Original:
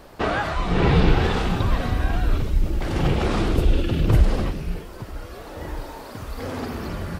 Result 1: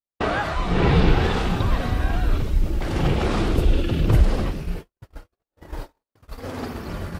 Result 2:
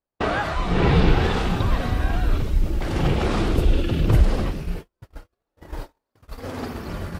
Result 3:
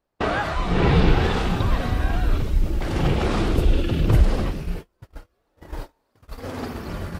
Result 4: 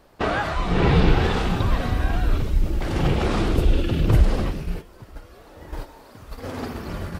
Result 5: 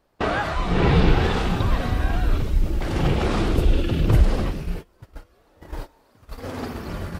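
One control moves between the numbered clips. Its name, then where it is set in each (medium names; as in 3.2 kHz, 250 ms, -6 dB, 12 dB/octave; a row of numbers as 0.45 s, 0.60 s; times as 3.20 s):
gate, range: -60 dB, -45 dB, -33 dB, -9 dB, -21 dB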